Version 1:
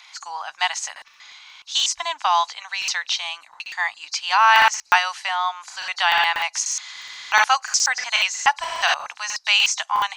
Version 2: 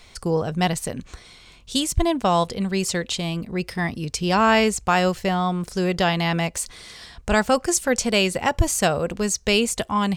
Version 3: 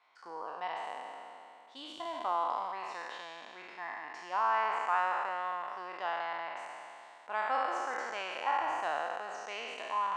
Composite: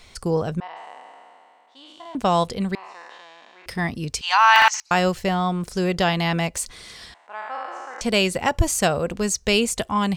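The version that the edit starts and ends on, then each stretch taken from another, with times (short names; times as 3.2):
2
0.6–2.15 from 3
2.75–3.66 from 3
4.21–4.91 from 1
7.14–8.01 from 3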